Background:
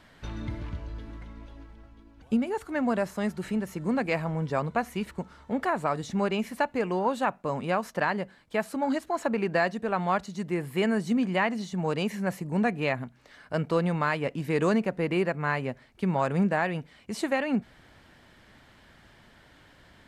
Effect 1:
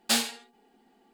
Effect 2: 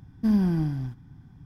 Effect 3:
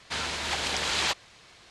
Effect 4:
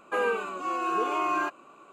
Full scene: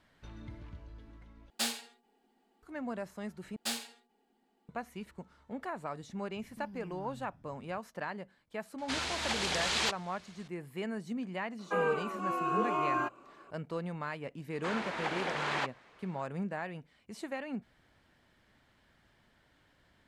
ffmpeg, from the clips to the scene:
-filter_complex "[1:a]asplit=2[a][b];[3:a]asplit=2[c][d];[0:a]volume=-12dB[e];[a]equalizer=f=100:t=o:w=0.77:g=-12[f];[2:a]acompressor=threshold=-35dB:ratio=6:attack=3.2:release=140:knee=1:detection=peak[g];[4:a]highshelf=f=2.2k:g=-8[h];[d]acrossover=split=160 2200:gain=0.0708 1 0.126[i][j][k];[i][j][k]amix=inputs=3:normalize=0[l];[e]asplit=3[m][n][o];[m]atrim=end=1.504[p];[f]atrim=end=1.13,asetpts=PTS-STARTPTS,volume=-8.5dB[q];[n]atrim=start=2.626:end=3.564[r];[b]atrim=end=1.13,asetpts=PTS-STARTPTS,volume=-11dB[s];[o]atrim=start=4.686[t];[g]atrim=end=1.45,asetpts=PTS-STARTPTS,volume=-12dB,afade=t=in:d=0.004:c=hsin,afade=t=out:st=1.446:d=0.004:c=hsin,adelay=279594S[u];[c]atrim=end=1.7,asetpts=PTS-STARTPTS,volume=-4dB,afade=t=in:d=0.004:c=hsin,afade=t=out:st=1.696:d=0.004:c=hsin,adelay=8780[v];[h]atrim=end=1.92,asetpts=PTS-STARTPTS,volume=-2.5dB,afade=t=in:d=0.004:c=hsin,afade=t=out:st=1.916:d=0.004:c=hsin,adelay=11590[w];[l]atrim=end=1.7,asetpts=PTS-STARTPTS,volume=-1.5dB,afade=t=in:d=0.004:c=hsin,afade=t=out:st=1.696:d=0.004:c=hsin,adelay=14530[x];[p][q]acrossfade=d=0.004:c1=hsin:c2=hsin[y];[y][r]acrossfade=d=0.004:c1=hsin:c2=hsin[z];[z][s]acrossfade=d=0.004:c1=hsin:c2=hsin[aa];[aa][t]acrossfade=d=0.004:c1=hsin:c2=hsin[ab];[ab][u][v][w][x]amix=inputs=5:normalize=0"

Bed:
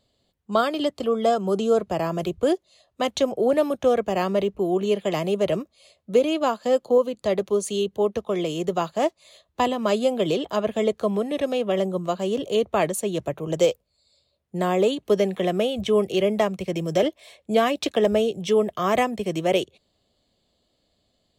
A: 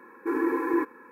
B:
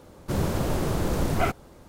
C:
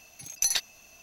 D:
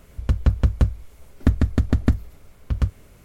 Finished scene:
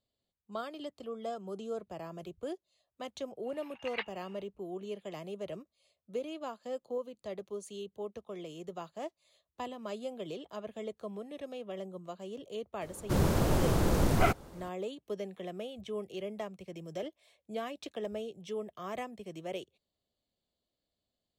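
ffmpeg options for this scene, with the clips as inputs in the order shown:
-filter_complex "[0:a]volume=-18dB[a];[3:a]highpass=f=550:t=q:w=0.5412,highpass=f=550:t=q:w=1.307,lowpass=f=2.6k:t=q:w=0.5176,lowpass=f=2.6k:t=q:w=0.7071,lowpass=f=2.6k:t=q:w=1.932,afreqshift=180,atrim=end=1.02,asetpts=PTS-STARTPTS,afade=t=in:d=0.1,afade=t=out:st=0.92:d=0.1,adelay=3430[b];[2:a]atrim=end=1.88,asetpts=PTS-STARTPTS,volume=-1.5dB,afade=t=in:d=0.004:c=hsin,afade=t=out:st=1.876:d=0.004:c=hsin,adelay=12810[c];[a][b][c]amix=inputs=3:normalize=0"

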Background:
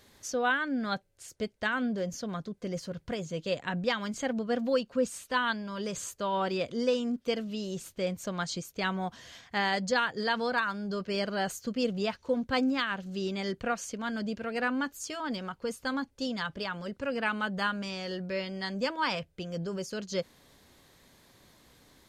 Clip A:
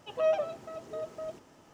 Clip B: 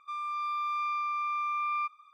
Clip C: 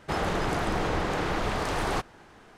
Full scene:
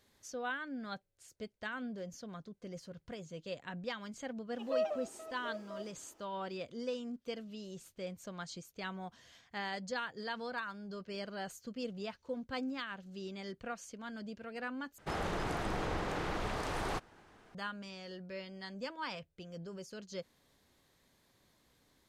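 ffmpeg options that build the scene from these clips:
-filter_complex "[0:a]volume=-11dB[a];[1:a]lowshelf=f=220:t=q:w=1.5:g=-10[b];[a]asplit=2[c][d];[c]atrim=end=14.984[e];[3:a]atrim=end=2.57,asetpts=PTS-STARTPTS,volume=-8.5dB[f];[d]atrim=start=17.546[g];[b]atrim=end=1.73,asetpts=PTS-STARTPTS,volume=-8dB,afade=t=in:d=0.004:c=hsin,afade=t=out:st=1.726:d=0.004:c=hsin,adelay=4520[h];[e][f]acrossfade=d=0.004:c1=hsin:c2=hsin[i];[i][g]acrossfade=d=0.004:c1=hsin:c2=hsin[j];[j][h]amix=inputs=2:normalize=0"

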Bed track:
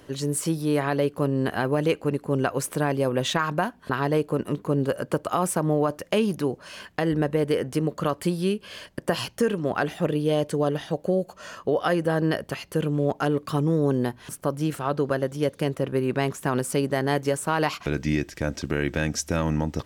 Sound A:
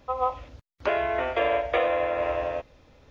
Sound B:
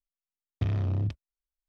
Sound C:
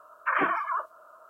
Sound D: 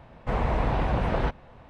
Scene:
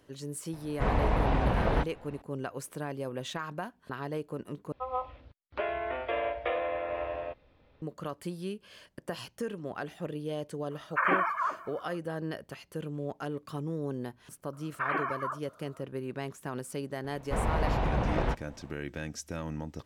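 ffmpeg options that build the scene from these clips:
-filter_complex "[4:a]asplit=2[a][b];[3:a]asplit=2[c][d];[0:a]volume=-12.5dB[e];[1:a]lowpass=f=4.1k:w=0.5412,lowpass=f=4.1k:w=1.3066[f];[c]aecho=1:1:396:0.0891[g];[e]asplit=2[h][i];[h]atrim=end=4.724[j];[f]atrim=end=3.1,asetpts=PTS-STARTPTS,volume=-7.5dB[k];[i]atrim=start=7.816[l];[a]atrim=end=1.69,asetpts=PTS-STARTPTS,volume=-1.5dB,afade=t=in:d=0.004:c=hsin,afade=t=out:st=1.686:d=0.004:c=hsin,adelay=530[m];[g]atrim=end=1.29,asetpts=PTS-STARTPTS,volume=-1dB,afade=t=in:d=0.02,afade=t=out:st=1.27:d=0.02,adelay=10700[n];[d]atrim=end=1.29,asetpts=PTS-STARTPTS,volume=-6dB,afade=t=in:d=0.004:c=hsin,afade=t=out:st=1.286:d=0.004:c=hsin,adelay=14530[o];[b]atrim=end=1.69,asetpts=PTS-STARTPTS,volume=-3.5dB,afade=t=in:d=0.004:c=hsin,afade=t=out:st=1.686:d=0.004:c=hsin,adelay=17040[p];[j][k]acrossfade=d=0.004:c1=hsin:c2=hsin[q];[q][l]acrossfade=d=0.004:c1=hsin:c2=hsin[r];[r][m][n][o][p]amix=inputs=5:normalize=0"

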